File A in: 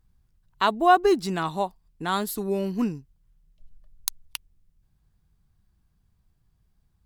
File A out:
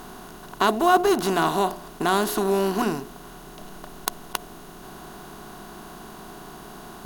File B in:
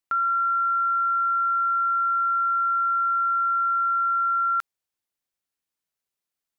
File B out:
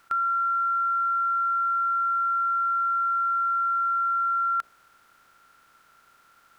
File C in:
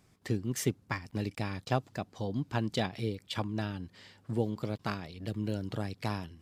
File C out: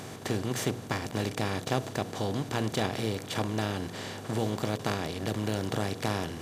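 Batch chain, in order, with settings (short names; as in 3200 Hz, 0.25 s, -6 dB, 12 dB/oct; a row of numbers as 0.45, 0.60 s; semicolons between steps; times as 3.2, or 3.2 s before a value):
per-bin compression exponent 0.4; de-hum 59.74 Hz, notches 12; gain -2 dB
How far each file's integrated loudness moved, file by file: +1.5, -2.0, +3.5 LU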